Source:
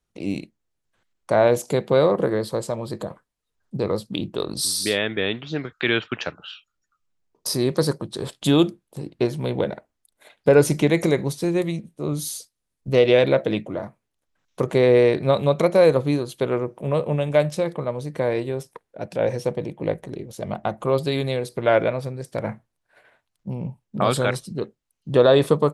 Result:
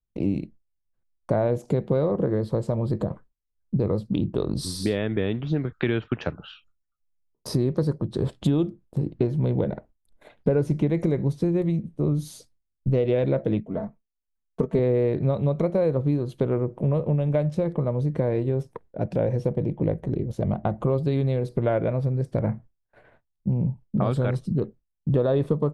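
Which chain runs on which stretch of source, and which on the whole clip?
0:13.60–0:14.79: comb filter 4.5 ms, depth 73% + expander for the loud parts, over −35 dBFS
whole clip: noise gate with hold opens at −49 dBFS; spectral tilt −4 dB per octave; downward compressor 4 to 1, threshold −21 dBFS

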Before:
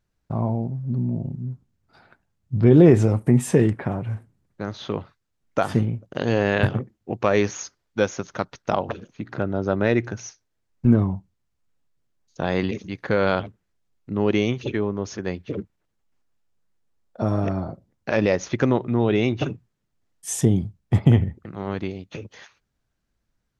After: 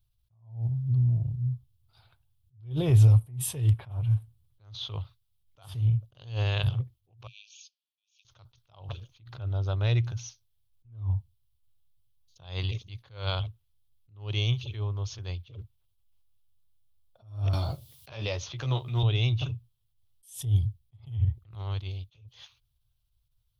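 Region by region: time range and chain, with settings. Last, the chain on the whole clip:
0:07.27–0:08.25: spectral tilt −4.5 dB per octave + downward compressor, threshold −15 dBFS + linear-phase brick-wall high-pass 2,300 Hz
0:17.53–0:19.03: high-pass filter 110 Hz + double-tracking delay 14 ms −5.5 dB + multiband upward and downward compressor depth 100%
whole clip: drawn EQ curve 120 Hz 0 dB, 200 Hz −28 dB, 1,100 Hz −13 dB, 1,800 Hz −22 dB, 3,300 Hz 0 dB, 6,900 Hz −12 dB, 11,000 Hz +3 dB; level that may rise only so fast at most 140 dB per second; level +4.5 dB

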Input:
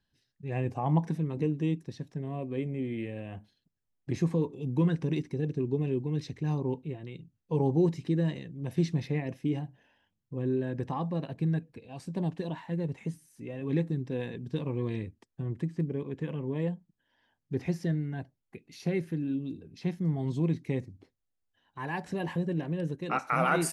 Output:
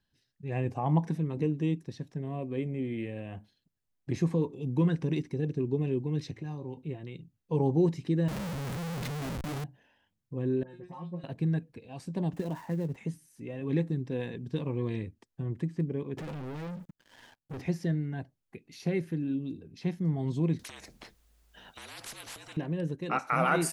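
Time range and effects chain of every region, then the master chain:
0:06.31–0:06.77: tuned comb filter 110 Hz, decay 0.24 s, harmonics odd, mix 70% + multiband upward and downward compressor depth 70%
0:08.28–0:09.64: parametric band 190 Hz +13 dB 0.87 octaves + downward compressor 10 to 1, threshold −30 dBFS + comparator with hysteresis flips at −51 dBFS
0:10.63–0:11.24: tuned comb filter 180 Hz, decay 0.19 s, mix 100% + all-pass dispersion highs, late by 59 ms, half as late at 2,000 Hz
0:12.33–0:12.96: gap after every zero crossing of 0.12 ms + parametric band 3,900 Hz −6.5 dB 1.8 octaves + multiband upward and downward compressor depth 70%
0:16.17–0:17.61: downward compressor 8 to 1, threshold −42 dBFS + leveller curve on the samples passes 5
0:20.59–0:22.57: downward compressor 4 to 1, threshold −37 dBFS + frequency shifter −54 Hz + every bin compressed towards the loudest bin 10 to 1
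whole clip: no processing

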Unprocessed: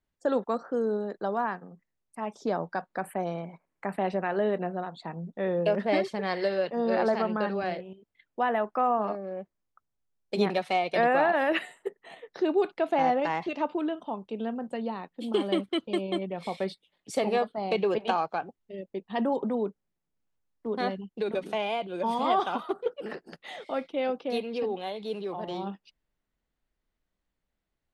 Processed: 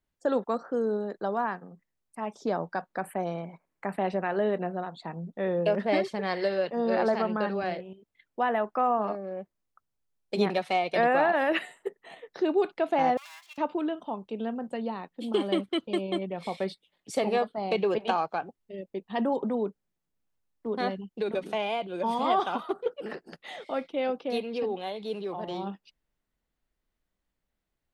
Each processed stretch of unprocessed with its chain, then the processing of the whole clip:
0:13.17–0:13.58: lower of the sound and its delayed copy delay 2.9 ms + high-pass filter 850 Hz 24 dB per octave + first difference
whole clip: no processing

